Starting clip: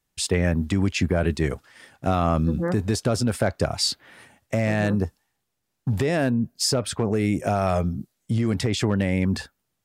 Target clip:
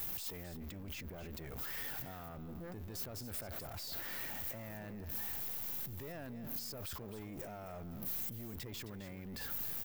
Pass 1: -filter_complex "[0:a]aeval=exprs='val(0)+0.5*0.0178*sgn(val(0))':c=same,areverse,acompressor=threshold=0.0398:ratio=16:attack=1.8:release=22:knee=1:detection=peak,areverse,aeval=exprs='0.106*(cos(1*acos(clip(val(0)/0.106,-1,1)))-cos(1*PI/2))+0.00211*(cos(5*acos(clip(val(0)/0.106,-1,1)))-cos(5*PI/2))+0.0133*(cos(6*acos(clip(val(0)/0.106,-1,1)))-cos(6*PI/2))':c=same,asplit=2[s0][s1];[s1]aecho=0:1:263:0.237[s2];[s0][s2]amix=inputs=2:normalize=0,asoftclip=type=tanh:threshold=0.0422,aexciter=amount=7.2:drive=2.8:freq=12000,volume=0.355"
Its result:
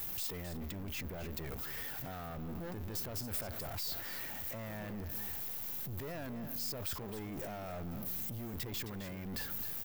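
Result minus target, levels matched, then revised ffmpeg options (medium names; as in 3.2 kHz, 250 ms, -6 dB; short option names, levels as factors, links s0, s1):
compression: peak gain reduction -7 dB
-filter_complex "[0:a]aeval=exprs='val(0)+0.5*0.0178*sgn(val(0))':c=same,areverse,acompressor=threshold=0.0168:ratio=16:attack=1.8:release=22:knee=1:detection=peak,areverse,aeval=exprs='0.106*(cos(1*acos(clip(val(0)/0.106,-1,1)))-cos(1*PI/2))+0.00211*(cos(5*acos(clip(val(0)/0.106,-1,1)))-cos(5*PI/2))+0.0133*(cos(6*acos(clip(val(0)/0.106,-1,1)))-cos(6*PI/2))':c=same,asplit=2[s0][s1];[s1]aecho=0:1:263:0.237[s2];[s0][s2]amix=inputs=2:normalize=0,asoftclip=type=tanh:threshold=0.0422,aexciter=amount=7.2:drive=2.8:freq=12000,volume=0.355"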